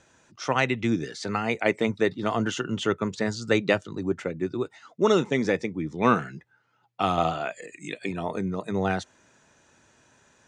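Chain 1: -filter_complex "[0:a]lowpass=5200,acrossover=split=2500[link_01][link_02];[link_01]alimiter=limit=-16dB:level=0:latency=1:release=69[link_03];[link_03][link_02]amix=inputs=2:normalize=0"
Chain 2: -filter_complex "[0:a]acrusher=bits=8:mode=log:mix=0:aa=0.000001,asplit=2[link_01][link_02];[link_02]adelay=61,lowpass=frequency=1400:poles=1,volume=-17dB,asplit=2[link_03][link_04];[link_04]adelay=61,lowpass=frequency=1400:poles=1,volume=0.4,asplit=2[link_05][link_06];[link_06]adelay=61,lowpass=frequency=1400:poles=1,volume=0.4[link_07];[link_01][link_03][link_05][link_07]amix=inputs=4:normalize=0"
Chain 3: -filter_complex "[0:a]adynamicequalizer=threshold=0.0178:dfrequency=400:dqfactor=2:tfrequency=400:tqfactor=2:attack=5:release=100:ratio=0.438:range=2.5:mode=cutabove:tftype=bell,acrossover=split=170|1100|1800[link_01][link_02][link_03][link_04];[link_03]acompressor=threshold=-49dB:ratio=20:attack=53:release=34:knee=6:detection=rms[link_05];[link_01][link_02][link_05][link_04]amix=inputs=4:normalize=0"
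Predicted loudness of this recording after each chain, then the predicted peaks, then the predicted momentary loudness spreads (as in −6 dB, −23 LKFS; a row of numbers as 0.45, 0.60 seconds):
−29.0, −26.5, −28.0 LKFS; −11.5, −5.5, −9.0 dBFS; 8, 10, 10 LU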